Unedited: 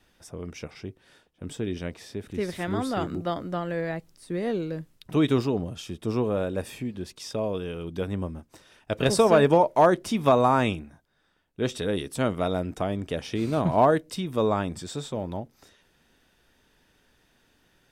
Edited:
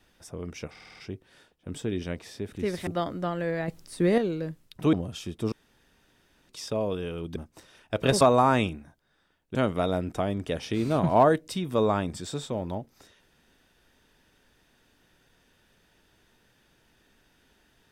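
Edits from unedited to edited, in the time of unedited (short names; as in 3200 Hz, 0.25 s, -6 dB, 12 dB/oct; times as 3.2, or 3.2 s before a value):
0.71 stutter 0.05 s, 6 plays
2.62–3.17 cut
3.98–4.48 gain +7 dB
5.23–5.56 cut
6.15–7.12 room tone
7.99–8.33 cut
9.18–10.27 cut
11.61–12.17 cut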